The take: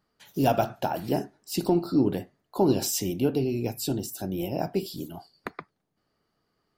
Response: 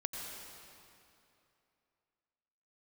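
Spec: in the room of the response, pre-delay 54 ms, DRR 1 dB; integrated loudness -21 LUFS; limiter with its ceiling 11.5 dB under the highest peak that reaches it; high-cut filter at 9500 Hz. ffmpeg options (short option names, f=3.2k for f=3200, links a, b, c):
-filter_complex "[0:a]lowpass=9.5k,alimiter=limit=-22dB:level=0:latency=1,asplit=2[a][b];[1:a]atrim=start_sample=2205,adelay=54[c];[b][c]afir=irnorm=-1:irlink=0,volume=-2.5dB[d];[a][d]amix=inputs=2:normalize=0,volume=10dB"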